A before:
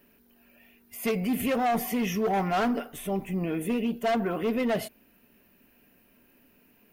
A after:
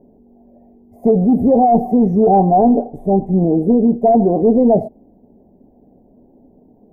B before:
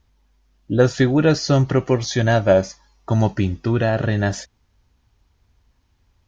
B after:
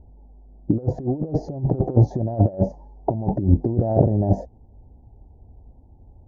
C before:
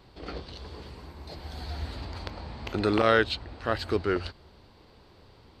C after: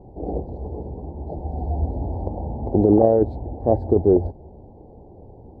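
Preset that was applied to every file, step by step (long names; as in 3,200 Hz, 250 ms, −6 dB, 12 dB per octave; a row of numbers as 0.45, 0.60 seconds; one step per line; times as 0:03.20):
elliptic low-pass filter 810 Hz, stop band 40 dB
compressor whose output falls as the input rises −25 dBFS, ratio −0.5
normalise the peak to −3 dBFS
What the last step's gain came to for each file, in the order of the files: +15.5, +6.5, +11.5 decibels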